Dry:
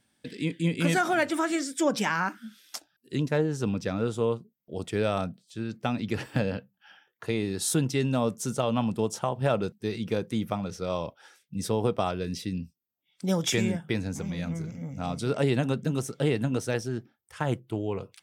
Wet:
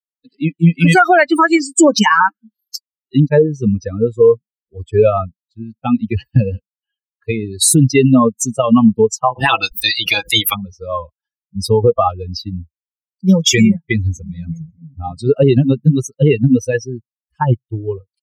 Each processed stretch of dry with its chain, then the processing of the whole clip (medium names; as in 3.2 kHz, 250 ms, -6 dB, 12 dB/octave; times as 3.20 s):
9.34–10.53 s: spectral peaks clipped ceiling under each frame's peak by 21 dB + comb 6.1 ms, depth 40% + swell ahead of each attack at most 120 dB/s
whole clip: expander on every frequency bin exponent 3; loudness maximiser +26 dB; trim -1 dB